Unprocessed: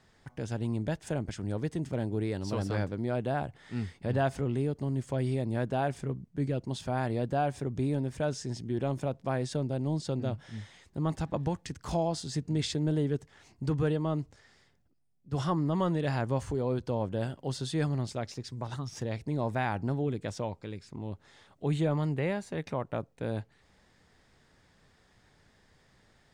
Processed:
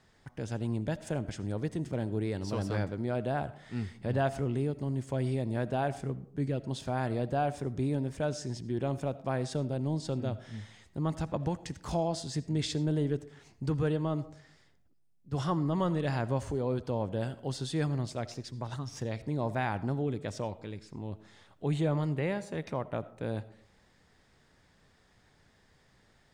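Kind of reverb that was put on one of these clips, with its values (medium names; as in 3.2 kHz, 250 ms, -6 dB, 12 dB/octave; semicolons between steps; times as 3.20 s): algorithmic reverb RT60 0.64 s, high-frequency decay 0.4×, pre-delay 40 ms, DRR 16.5 dB; trim -1 dB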